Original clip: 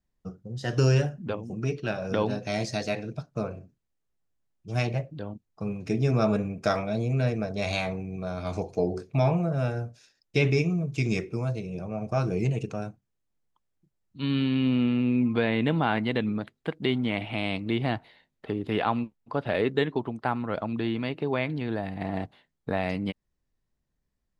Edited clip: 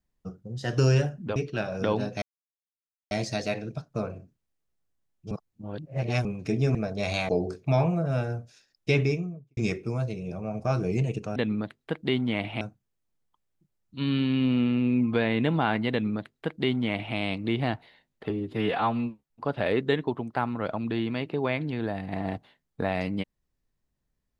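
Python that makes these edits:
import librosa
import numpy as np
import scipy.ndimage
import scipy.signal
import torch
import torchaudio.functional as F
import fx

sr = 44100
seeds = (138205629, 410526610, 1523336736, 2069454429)

y = fx.studio_fade_out(x, sr, start_s=10.38, length_s=0.66)
y = fx.edit(y, sr, fx.cut(start_s=1.36, length_s=0.3),
    fx.insert_silence(at_s=2.52, length_s=0.89),
    fx.reverse_span(start_s=4.72, length_s=0.94),
    fx.cut(start_s=6.16, length_s=1.18),
    fx.cut(start_s=7.88, length_s=0.88),
    fx.duplicate(start_s=16.13, length_s=1.25, to_s=12.83),
    fx.stretch_span(start_s=18.52, length_s=0.67, factor=1.5), tone=tone)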